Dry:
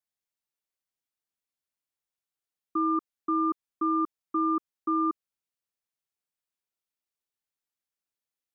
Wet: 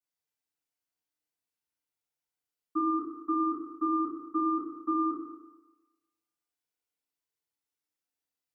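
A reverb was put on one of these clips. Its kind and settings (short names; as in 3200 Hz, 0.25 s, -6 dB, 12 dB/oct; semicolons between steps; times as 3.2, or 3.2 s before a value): FDN reverb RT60 1.2 s, low-frequency decay 0.85×, high-frequency decay 0.8×, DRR -9.5 dB; gain -10 dB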